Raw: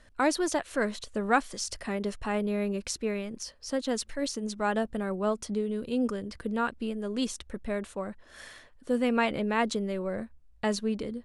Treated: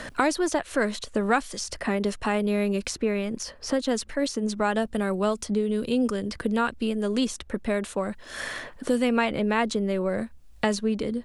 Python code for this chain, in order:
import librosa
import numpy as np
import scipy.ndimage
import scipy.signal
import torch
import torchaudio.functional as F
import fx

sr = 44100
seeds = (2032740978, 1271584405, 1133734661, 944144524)

y = fx.band_squash(x, sr, depth_pct=70)
y = F.gain(torch.from_numpy(y), 4.0).numpy()